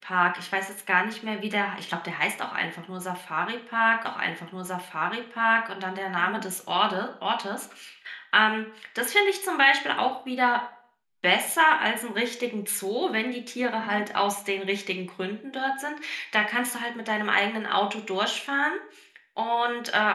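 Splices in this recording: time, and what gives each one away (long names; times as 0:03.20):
0:04.05: the same again, the last 1.64 s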